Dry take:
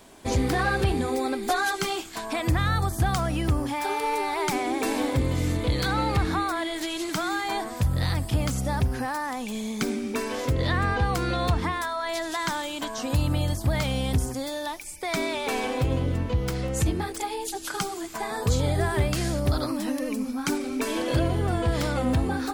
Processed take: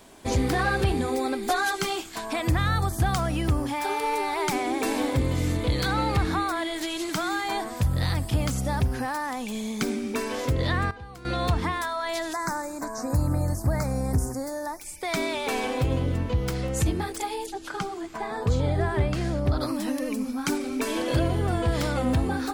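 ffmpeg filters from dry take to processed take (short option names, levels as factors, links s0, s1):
-filter_complex "[0:a]asettb=1/sr,asplit=3[s0][s1][s2];[s0]atrim=end=12.334[s3];[s1]atrim=start=12.33:end=14.81,asetpts=PTS-STARTPTS,afade=t=in:d=0.004:c=qsin,afade=t=out:st=2.476:d=0.004:c=qsin,asuperstop=centerf=3100:order=4:qfactor=0.88[s4];[s2]atrim=start=14.806[s5];[s3][s4]acrossfade=d=0.004:c1=hsin:c2=qsin[s6];[s6][s5]acrossfade=d=0.004:c1=qsin:c2=hsin,asettb=1/sr,asplit=3[s7][s8][s9];[s7]atrim=end=17.464[s10];[s8]atrim=start=17.46:end=19.61,asetpts=PTS-STARTPTS,afade=t=in:d=0.004:c=qsin,afade=t=out:st=2.146:d=0.004:c=qsin,aemphasis=mode=reproduction:type=75kf[s11];[s9]atrim=start=19.606[s12];[s10][s11]acrossfade=d=0.004:c1=hsin:c2=qsin[s13];[s13][s12]acrossfade=d=0.004:c1=qsin:c2=hsin,asplit=3[s14][s15][s16];[s14]atrim=end=10.91,asetpts=PTS-STARTPTS,afade=t=out:st=10.45:d=0.46:c=log:silence=0.133352[s17];[s15]atrim=start=10.91:end=11.25,asetpts=PTS-STARTPTS,volume=0.133[s18];[s16]atrim=start=11.25,asetpts=PTS-STARTPTS,afade=t=in:d=0.46:c=log:silence=0.133352[s19];[s17][s18][s19]concat=n=3:v=0:a=1"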